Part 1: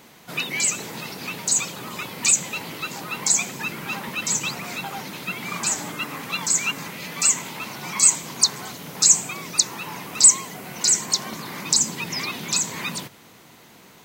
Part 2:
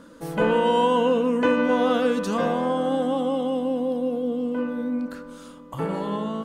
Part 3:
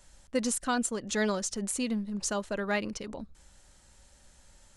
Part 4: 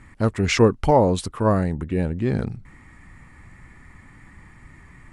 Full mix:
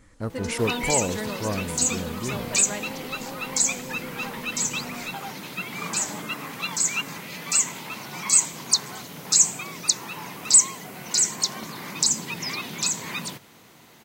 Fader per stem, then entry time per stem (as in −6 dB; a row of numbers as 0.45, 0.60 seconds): −2.5, −16.0, −5.0, −10.0 decibels; 0.30, 0.00, 0.00, 0.00 seconds